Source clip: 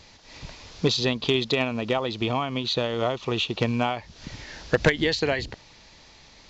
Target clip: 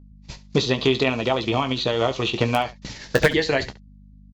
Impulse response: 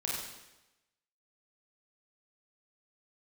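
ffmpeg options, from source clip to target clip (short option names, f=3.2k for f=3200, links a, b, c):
-filter_complex "[0:a]aemphasis=mode=production:type=cd,acrossover=split=2500[a][b];[b]acompressor=threshold=-31dB:ratio=4:attack=1:release=60[c];[a][c]amix=inputs=2:normalize=0,agate=range=-51dB:threshold=-38dB:ratio=16:detection=peak,lowshelf=f=190:g=-2.5,asplit=2[d][e];[e]aeval=exprs='(mod(3.16*val(0)+1,2)-1)/3.16':c=same,volume=-5dB[f];[d][f]amix=inputs=2:normalize=0,aeval=exprs='val(0)+0.00562*(sin(2*PI*50*n/s)+sin(2*PI*2*50*n/s)/2+sin(2*PI*3*50*n/s)/3+sin(2*PI*4*50*n/s)/4+sin(2*PI*5*50*n/s)/5)':c=same,atempo=1.5,asplit=2[g][h];[h]aecho=0:1:15|26|70:0.376|0.158|0.15[i];[g][i]amix=inputs=2:normalize=0"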